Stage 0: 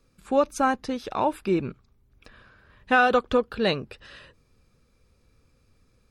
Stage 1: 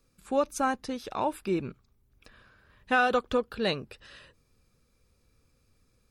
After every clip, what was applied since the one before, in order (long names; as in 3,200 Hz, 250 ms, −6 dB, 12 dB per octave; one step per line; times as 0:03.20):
high-shelf EQ 6,500 Hz +8.5 dB
level −5 dB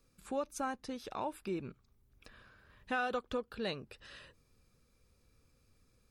downward compressor 1.5 to 1, threshold −45 dBFS, peak gain reduction 9 dB
level −2 dB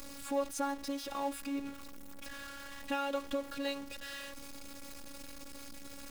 converter with a step at zero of −41 dBFS
phases set to zero 280 Hz
level +2 dB